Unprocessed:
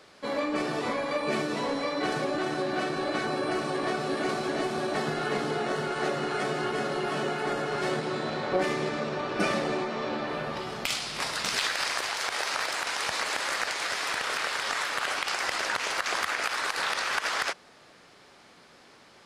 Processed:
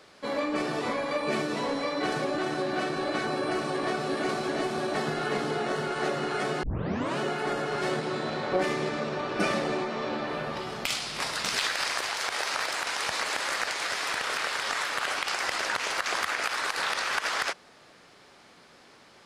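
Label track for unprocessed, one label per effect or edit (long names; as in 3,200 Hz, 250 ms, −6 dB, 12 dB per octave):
6.630000	6.630000	tape start 0.56 s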